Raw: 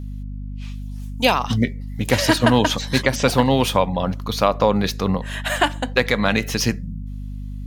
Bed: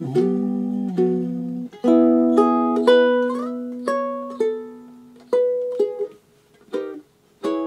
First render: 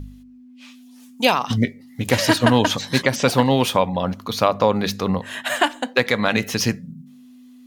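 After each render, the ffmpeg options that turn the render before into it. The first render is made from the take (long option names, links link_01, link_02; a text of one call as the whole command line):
ffmpeg -i in.wav -af "bandreject=frequency=50:width_type=h:width=4,bandreject=frequency=100:width_type=h:width=4,bandreject=frequency=150:width_type=h:width=4,bandreject=frequency=200:width_type=h:width=4" out.wav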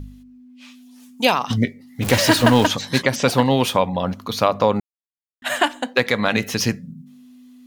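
ffmpeg -i in.wav -filter_complex "[0:a]asettb=1/sr,asplit=3[link_01][link_02][link_03];[link_01]atrim=end=2.024[link_04];[link_02]atrim=start=2.02:end=2.67,asetpts=PTS-STARTPTS,afade=type=in:duration=0.004:curve=qsin,afade=type=out:start_time=0.646:duration=0.004:curve=qsin,aeval=exprs='val(0)+0.5*0.0841*sgn(val(0))':channel_layout=same[link_05];[link_03]atrim=start=2.666[link_06];[link_04][link_05]acrossfade=duration=0.004:curve1=hsin:curve2=qsin[link_07];[link_07][link_06]acrossfade=duration=0.004:curve1=qsin:curve2=hsin,asplit=3[link_08][link_09][link_10];[link_08]atrim=end=4.8,asetpts=PTS-STARTPTS,afade=type=out:start_time=4.796:duration=0.004:curve=hsin[link_11];[link_09]atrim=start=4.8:end=5.42,asetpts=PTS-STARTPTS,volume=0[link_12];[link_10]atrim=start=5.42,asetpts=PTS-STARTPTS,afade=type=in:duration=0.004:curve=hsin[link_13];[link_11][link_12][link_13]concat=n=3:v=0:a=1" out.wav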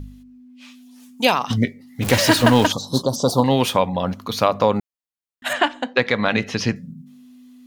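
ffmpeg -i in.wav -filter_complex "[0:a]asettb=1/sr,asplit=3[link_01][link_02][link_03];[link_01]atrim=end=2.724[link_04];[link_02]atrim=start=2.72:end=3.44,asetpts=PTS-STARTPTS,afade=type=in:duration=0.004:curve=qsin,afade=type=out:start_time=0.716:duration=0.004:curve=qsin,asuperstop=centerf=2100:order=8:qfactor=0.81[link_05];[link_03]atrim=start=3.436[link_06];[link_04][link_05]acrossfade=duration=0.004:curve1=hsin:curve2=qsin[link_07];[link_07][link_06]acrossfade=duration=0.004:curve1=qsin:curve2=hsin,asettb=1/sr,asplit=3[link_08][link_09][link_10];[link_08]atrim=end=5.534[link_11];[link_09]atrim=start=5.53:end=6.76,asetpts=PTS-STARTPTS,afade=type=in:duration=0.004:curve=qsin,afade=type=out:start_time=1.226:duration=0.004:curve=qsin,lowpass=4500[link_12];[link_10]atrim=start=6.756[link_13];[link_11][link_12]acrossfade=duration=0.004:curve1=hsin:curve2=qsin[link_14];[link_14][link_13]acrossfade=duration=0.004:curve1=qsin:curve2=hsin" out.wav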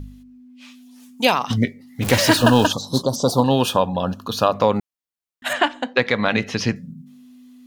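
ffmpeg -i in.wav -filter_complex "[0:a]asettb=1/sr,asplit=3[link_01][link_02][link_03];[link_01]atrim=end=2.374[link_04];[link_02]atrim=start=2.37:end=4.53,asetpts=PTS-STARTPTS,afade=type=in:duration=0.004:curve=qsin,afade=type=out:start_time=2.156:duration=0.004:curve=qsin,asuperstop=centerf=2100:order=20:qfactor=3.3[link_05];[link_03]atrim=start=4.526[link_06];[link_04][link_05]acrossfade=duration=0.004:curve1=hsin:curve2=qsin[link_07];[link_07][link_06]acrossfade=duration=0.004:curve1=qsin:curve2=hsin" out.wav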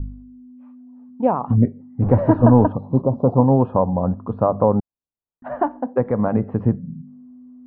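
ffmpeg -i in.wav -af "lowpass=frequency=1000:width=0.5412,lowpass=frequency=1000:width=1.3066,lowshelf=frequency=170:gain=8.5" out.wav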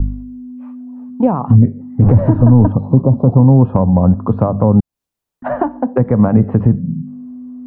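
ffmpeg -i in.wav -filter_complex "[0:a]acrossover=split=230[link_01][link_02];[link_02]acompressor=threshold=-29dB:ratio=4[link_03];[link_01][link_03]amix=inputs=2:normalize=0,alimiter=level_in=12.5dB:limit=-1dB:release=50:level=0:latency=1" out.wav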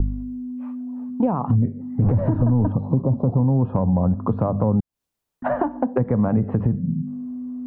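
ffmpeg -i in.wav -af "alimiter=limit=-4dB:level=0:latency=1:release=24,acompressor=threshold=-21dB:ratio=2" out.wav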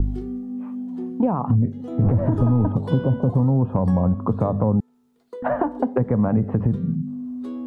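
ffmpeg -i in.wav -i bed.wav -filter_complex "[1:a]volume=-17.5dB[link_01];[0:a][link_01]amix=inputs=2:normalize=0" out.wav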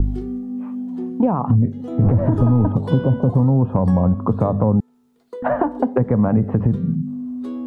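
ffmpeg -i in.wav -af "volume=3dB" out.wav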